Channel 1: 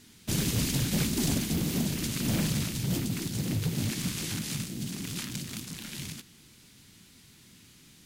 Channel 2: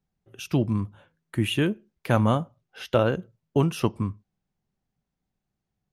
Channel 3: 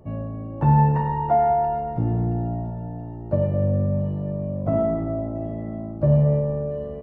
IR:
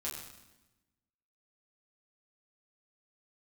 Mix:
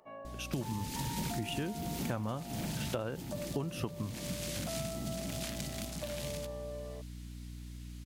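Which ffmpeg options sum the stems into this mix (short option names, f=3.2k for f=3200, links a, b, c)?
-filter_complex "[0:a]aeval=exprs='val(0)+0.00891*(sin(2*PI*60*n/s)+sin(2*PI*2*60*n/s)/2+sin(2*PI*3*60*n/s)/3+sin(2*PI*4*60*n/s)/4+sin(2*PI*5*60*n/s)/5)':c=same,adelay=250,volume=-3dB[a];[1:a]volume=-4.5dB,asplit=2[b][c];[2:a]highpass=900,acompressor=threshold=-42dB:ratio=2.5,volume=-1dB[d];[c]apad=whole_len=366099[e];[a][e]sidechaincompress=threshold=-27dB:ratio=8:attack=8.9:release=1220[f];[f][b][d]amix=inputs=3:normalize=0,acompressor=threshold=-33dB:ratio=6"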